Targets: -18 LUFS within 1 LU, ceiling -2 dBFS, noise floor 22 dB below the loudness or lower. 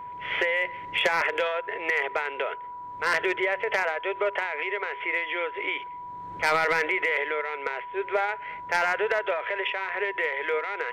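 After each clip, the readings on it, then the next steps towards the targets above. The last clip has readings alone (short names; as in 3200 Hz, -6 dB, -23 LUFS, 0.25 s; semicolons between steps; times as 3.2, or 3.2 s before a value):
steady tone 980 Hz; tone level -36 dBFS; loudness -27.0 LUFS; peak -15.0 dBFS; loudness target -18.0 LUFS
-> notch 980 Hz, Q 30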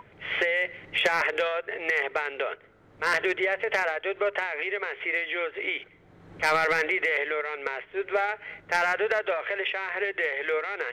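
steady tone none; loudness -27.0 LUFS; peak -14.5 dBFS; loudness target -18.0 LUFS
-> gain +9 dB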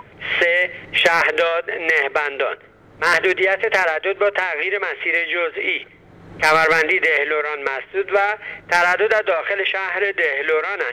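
loudness -18.0 LUFS; peak -5.5 dBFS; noise floor -47 dBFS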